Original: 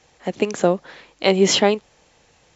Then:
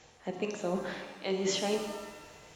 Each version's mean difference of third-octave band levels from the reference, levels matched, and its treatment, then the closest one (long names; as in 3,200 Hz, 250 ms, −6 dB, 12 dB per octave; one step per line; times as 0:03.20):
8.5 dB: reversed playback
downward compressor 5 to 1, threshold −32 dBFS, peak gain reduction 19.5 dB
reversed playback
reverb with rising layers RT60 1.2 s, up +7 semitones, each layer −8 dB, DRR 3.5 dB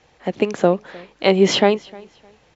1.5 dB: high-frequency loss of the air 120 metres
on a send: repeating echo 306 ms, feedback 25%, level −23.5 dB
on the sum: level +2 dB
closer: second